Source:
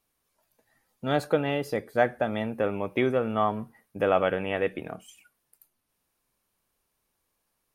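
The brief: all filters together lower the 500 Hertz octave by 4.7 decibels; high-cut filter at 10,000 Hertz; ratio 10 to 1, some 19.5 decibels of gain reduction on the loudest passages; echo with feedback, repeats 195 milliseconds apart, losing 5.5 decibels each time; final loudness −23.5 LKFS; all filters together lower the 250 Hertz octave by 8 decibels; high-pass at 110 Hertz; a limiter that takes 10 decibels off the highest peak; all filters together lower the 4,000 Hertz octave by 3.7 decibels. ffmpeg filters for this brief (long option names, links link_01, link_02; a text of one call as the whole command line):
ffmpeg -i in.wav -af "highpass=110,lowpass=10000,equalizer=frequency=250:width_type=o:gain=-9,equalizer=frequency=500:width_type=o:gain=-3.5,equalizer=frequency=4000:width_type=o:gain=-5,acompressor=threshold=-40dB:ratio=10,alimiter=level_in=10dB:limit=-24dB:level=0:latency=1,volume=-10dB,aecho=1:1:195|390|585|780|975|1170|1365:0.531|0.281|0.149|0.079|0.0419|0.0222|0.0118,volume=23.5dB" out.wav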